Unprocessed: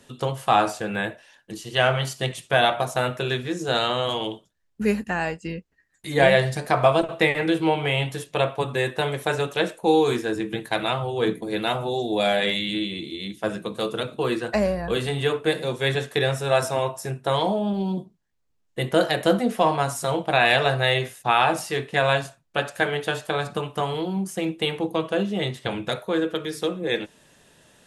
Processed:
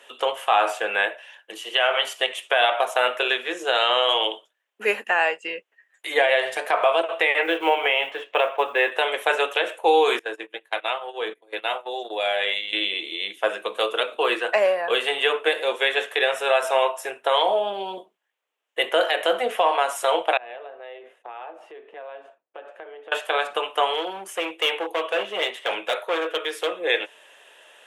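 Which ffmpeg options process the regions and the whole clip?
ffmpeg -i in.wav -filter_complex "[0:a]asettb=1/sr,asplit=3[link_01][link_02][link_03];[link_01]atrim=end=7.424[link_04];[link_02]atrim=start=7.42:end=8.92,asetpts=PTS-STARTPTS,afade=type=in:duration=0.004:curve=qsin,afade=type=out:start_time=1.496:duration=0.004:curve=qsin,lowpass=2800,acrusher=bits=8:mode=log:mix=0:aa=0.000001[link_05];[link_03]atrim=start=8.916[link_06];[link_04][link_05]acrossfade=duration=0.004:curve1=hsin:curve2=qsin[link_07];[link_07][link_06]acrossfade=duration=0.004:curve1=qsin:curve2=hsin,asettb=1/sr,asplit=3[link_08][link_09][link_10];[link_08]atrim=end=10.194[link_11];[link_09]atrim=start=10.19:end=12.73,asetpts=PTS-STARTPTS,afade=type=in:duration=0.004:curve=qsin,afade=type=out:start_time=2.536:duration=0.004:curve=qsin,agate=range=-24dB:threshold=-27dB:ratio=16:release=100:detection=peak,acompressor=threshold=-32dB:ratio=2:attack=3.2:release=140:knee=1:detection=peak[link_12];[link_10]atrim=start=12.726[link_13];[link_11][link_12]acrossfade=duration=0.004:curve1=hsin:curve2=qsin[link_14];[link_14][link_13]acrossfade=duration=0.004:curve1=qsin:curve2=hsin,asettb=1/sr,asplit=3[link_15][link_16][link_17];[link_15]atrim=end=20.374[link_18];[link_16]atrim=start=20.37:end=23.12,asetpts=PTS-STARTPTS,afade=type=in:duration=0.004:curve=qsin,afade=type=out:start_time=2.746:duration=0.004:curve=qsin,bandpass=frequency=300:width_type=q:width=1,acompressor=threshold=-39dB:ratio=8:attack=3.2:release=140:knee=1:detection=peak[link_19];[link_17]atrim=start=23.116[link_20];[link_18][link_19]acrossfade=duration=0.004:curve1=hsin:curve2=qsin[link_21];[link_21][link_20]acrossfade=duration=0.004:curve1=qsin:curve2=hsin,asettb=1/sr,asplit=3[link_22][link_23][link_24];[link_22]atrim=end=23.934[link_25];[link_23]atrim=start=23.93:end=26.72,asetpts=PTS-STARTPTS,afade=type=in:duration=0.004:curve=qsin,afade=type=out:start_time=2.786:duration=0.004:curve=qsin,highpass=frequency=110:poles=1,asoftclip=type=hard:threshold=-23.5dB[link_26];[link_24]atrim=start=26.716[link_27];[link_25][link_26]acrossfade=duration=0.004:curve1=hsin:curve2=qsin[link_28];[link_28][link_27]acrossfade=duration=0.004:curve1=qsin:curve2=hsin,highpass=frequency=480:width=0.5412,highpass=frequency=480:width=1.3066,highshelf=frequency=3700:width_type=q:width=3:gain=-6,alimiter=limit=-14.5dB:level=0:latency=1:release=137,volume=6dB" out.wav

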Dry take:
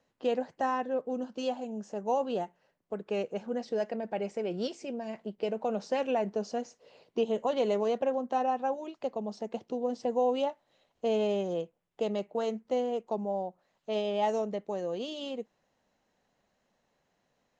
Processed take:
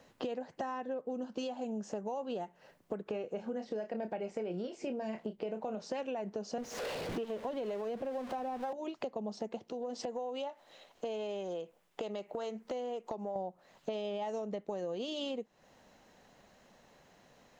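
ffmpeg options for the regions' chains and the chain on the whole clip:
ffmpeg -i in.wav -filter_complex "[0:a]asettb=1/sr,asplit=3[link_01][link_02][link_03];[link_01]atrim=end=3.054[link_04];[link_02]atrim=start=3.05:end=5.82,asetpts=PTS-STARTPTS,afade=type=in:duration=0.004:curve=qsin,afade=type=out:start_time=2.766:duration=0.004:curve=qsin,acrossover=split=2700[link_05][link_06];[link_06]acompressor=threshold=-57dB:ratio=4:attack=1:release=60[link_07];[link_05][link_07]amix=inputs=2:normalize=0,asplit=2[link_08][link_09];[link_09]adelay=28,volume=-9dB[link_10];[link_08][link_10]amix=inputs=2:normalize=0,atrim=end_sample=122157[link_11];[link_03]atrim=start=5.816[link_12];[link_04][link_11]acrossfade=duration=0.004:curve1=hsin:curve2=qsin[link_13];[link_13][link_12]acrossfade=duration=0.004:curve1=qsin:curve2=hsin,asettb=1/sr,asplit=3[link_14][link_15][link_16];[link_14]atrim=end=6.584[link_17];[link_15]atrim=start=6.58:end=8.73,asetpts=PTS-STARTPTS,afade=type=in:duration=0.004:curve=qsin,afade=type=out:start_time=2.146:duration=0.004:curve=qsin,aeval=exprs='val(0)+0.5*0.0141*sgn(val(0))':channel_layout=same,lowpass=frequency=3400:poles=1,acrossover=split=400[link_18][link_19];[link_18]aeval=exprs='val(0)*(1-0.5/2+0.5/2*cos(2*PI*2.1*n/s))':channel_layout=same[link_20];[link_19]aeval=exprs='val(0)*(1-0.5/2-0.5/2*cos(2*PI*2.1*n/s))':channel_layout=same[link_21];[link_20][link_21]amix=inputs=2:normalize=0[link_22];[link_16]atrim=start=8.726[link_23];[link_17][link_22]acrossfade=duration=0.004:curve1=hsin:curve2=qsin[link_24];[link_24][link_23]acrossfade=duration=0.004:curve1=qsin:curve2=hsin,asettb=1/sr,asplit=3[link_25][link_26][link_27];[link_25]atrim=end=9.694[link_28];[link_26]atrim=start=9.69:end=13.36,asetpts=PTS-STARTPTS,afade=type=in:duration=0.004:curve=qsin,afade=type=out:start_time=3.666:duration=0.004:curve=qsin,equalizer=frequency=67:width=0.34:gain=-13.5,acompressor=threshold=-50dB:ratio=2:attack=3.2:release=140:knee=1:detection=peak[link_29];[link_27]atrim=start=13.356[link_30];[link_28][link_29]acrossfade=duration=0.004:curve1=hsin:curve2=qsin[link_31];[link_31][link_30]acrossfade=duration=0.004:curve1=qsin:curve2=hsin,alimiter=level_in=5.5dB:limit=-24dB:level=0:latency=1:release=361,volume=-5.5dB,acompressor=threshold=-49dB:ratio=6,volume=13dB" out.wav

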